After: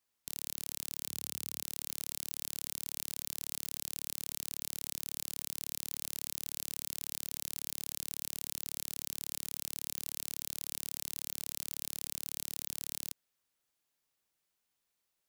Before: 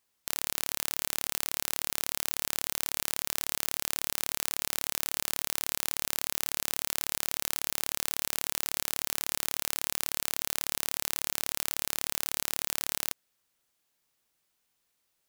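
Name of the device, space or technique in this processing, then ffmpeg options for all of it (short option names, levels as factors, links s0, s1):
one-band saturation: -filter_complex "[0:a]asettb=1/sr,asplit=3[s0][s1][s2];[s0]atrim=end=1.064[s3];[s1]atrim=start=1.06:end=1.63,asetpts=PTS-STARTPTS,afade=t=in:d=0.004:c=qsin,afade=t=out:st=0.566:d=0.004:c=qsin,highpass=f=85:w=0.5412,highpass=f=85:w=1.3066[s4];[s2]atrim=start=1.626[s5];[s3][s4]acrossfade=d=0.004:c1=hsin:c2=qsin[s6];[s6][s5]acrossfade=d=0.004:c1=qsin:c2=hsin,acrossover=split=220|3000[s7][s8][s9];[s8]asoftclip=type=tanh:threshold=0.0112[s10];[s7][s10][s9]amix=inputs=3:normalize=0,volume=0.473"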